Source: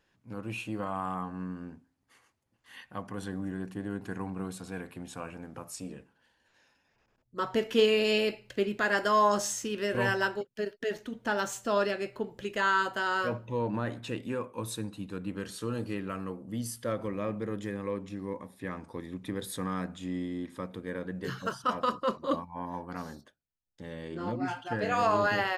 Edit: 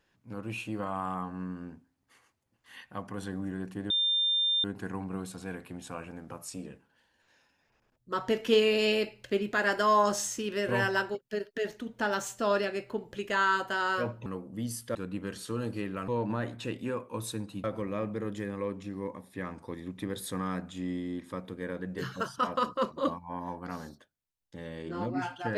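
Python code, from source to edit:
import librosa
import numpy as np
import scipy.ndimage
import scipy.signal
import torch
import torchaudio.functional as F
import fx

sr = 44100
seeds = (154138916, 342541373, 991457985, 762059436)

y = fx.edit(x, sr, fx.insert_tone(at_s=3.9, length_s=0.74, hz=3600.0, db=-24.0),
    fx.swap(start_s=13.52, length_s=1.56, other_s=16.21, other_length_s=0.69), tone=tone)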